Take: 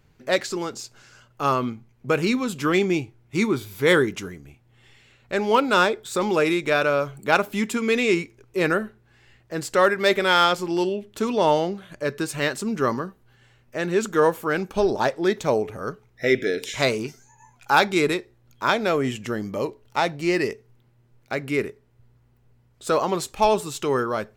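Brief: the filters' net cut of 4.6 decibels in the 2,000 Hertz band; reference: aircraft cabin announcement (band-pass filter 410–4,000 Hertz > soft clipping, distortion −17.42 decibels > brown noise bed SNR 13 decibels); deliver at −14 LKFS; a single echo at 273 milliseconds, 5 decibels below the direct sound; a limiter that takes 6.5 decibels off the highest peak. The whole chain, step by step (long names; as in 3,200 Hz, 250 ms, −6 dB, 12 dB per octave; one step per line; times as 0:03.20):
parametric band 2,000 Hz −6 dB
brickwall limiter −12.5 dBFS
band-pass filter 410–4,000 Hz
single-tap delay 273 ms −5 dB
soft clipping −16.5 dBFS
brown noise bed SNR 13 dB
level +14.5 dB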